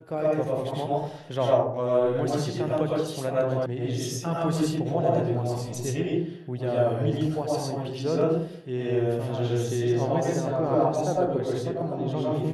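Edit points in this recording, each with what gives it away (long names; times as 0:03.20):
0:03.66: cut off before it has died away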